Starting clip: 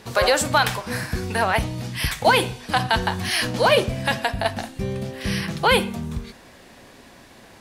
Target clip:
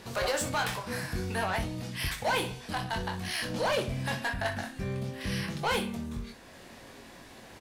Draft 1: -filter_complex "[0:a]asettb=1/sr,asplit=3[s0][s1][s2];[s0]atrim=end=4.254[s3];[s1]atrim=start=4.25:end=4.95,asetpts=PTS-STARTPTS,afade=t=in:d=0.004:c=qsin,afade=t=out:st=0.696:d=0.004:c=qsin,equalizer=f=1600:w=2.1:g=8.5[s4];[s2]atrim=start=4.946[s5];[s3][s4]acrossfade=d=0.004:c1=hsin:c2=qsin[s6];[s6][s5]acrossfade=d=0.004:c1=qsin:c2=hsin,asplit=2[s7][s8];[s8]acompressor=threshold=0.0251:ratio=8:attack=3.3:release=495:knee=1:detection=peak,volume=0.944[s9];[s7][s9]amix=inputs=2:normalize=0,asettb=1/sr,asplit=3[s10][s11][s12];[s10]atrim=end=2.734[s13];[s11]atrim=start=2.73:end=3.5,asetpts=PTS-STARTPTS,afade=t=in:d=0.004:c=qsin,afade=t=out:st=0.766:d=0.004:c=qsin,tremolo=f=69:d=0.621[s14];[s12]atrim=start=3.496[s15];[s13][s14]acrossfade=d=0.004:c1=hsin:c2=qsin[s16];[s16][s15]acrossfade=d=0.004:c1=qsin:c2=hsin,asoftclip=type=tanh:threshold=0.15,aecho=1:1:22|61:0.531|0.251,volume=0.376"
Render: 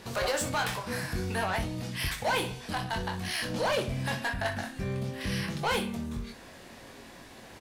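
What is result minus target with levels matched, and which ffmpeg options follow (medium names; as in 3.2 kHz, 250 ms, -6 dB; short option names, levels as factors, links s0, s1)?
compression: peak gain reduction -9 dB
-filter_complex "[0:a]asettb=1/sr,asplit=3[s0][s1][s2];[s0]atrim=end=4.254[s3];[s1]atrim=start=4.25:end=4.95,asetpts=PTS-STARTPTS,afade=t=in:d=0.004:c=qsin,afade=t=out:st=0.696:d=0.004:c=qsin,equalizer=f=1600:w=2.1:g=8.5[s4];[s2]atrim=start=4.946[s5];[s3][s4]acrossfade=d=0.004:c1=hsin:c2=qsin[s6];[s6][s5]acrossfade=d=0.004:c1=qsin:c2=hsin,asplit=2[s7][s8];[s8]acompressor=threshold=0.0075:ratio=8:attack=3.3:release=495:knee=1:detection=peak,volume=0.944[s9];[s7][s9]amix=inputs=2:normalize=0,asettb=1/sr,asplit=3[s10][s11][s12];[s10]atrim=end=2.734[s13];[s11]atrim=start=2.73:end=3.5,asetpts=PTS-STARTPTS,afade=t=in:d=0.004:c=qsin,afade=t=out:st=0.766:d=0.004:c=qsin,tremolo=f=69:d=0.621[s14];[s12]atrim=start=3.496[s15];[s13][s14]acrossfade=d=0.004:c1=hsin:c2=qsin[s16];[s16][s15]acrossfade=d=0.004:c1=qsin:c2=hsin,asoftclip=type=tanh:threshold=0.15,aecho=1:1:22|61:0.531|0.251,volume=0.376"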